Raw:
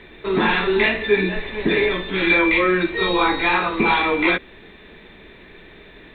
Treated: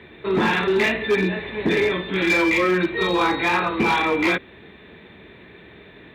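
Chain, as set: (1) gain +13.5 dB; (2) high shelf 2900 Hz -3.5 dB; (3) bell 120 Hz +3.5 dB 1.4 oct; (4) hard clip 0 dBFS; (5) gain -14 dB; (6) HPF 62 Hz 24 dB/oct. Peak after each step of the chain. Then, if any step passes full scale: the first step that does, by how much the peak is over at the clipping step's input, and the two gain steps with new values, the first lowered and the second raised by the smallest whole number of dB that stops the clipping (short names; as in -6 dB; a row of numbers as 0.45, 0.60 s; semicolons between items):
+8.0, +7.5, +8.0, 0.0, -14.0, -9.0 dBFS; step 1, 8.0 dB; step 1 +5.5 dB, step 5 -6 dB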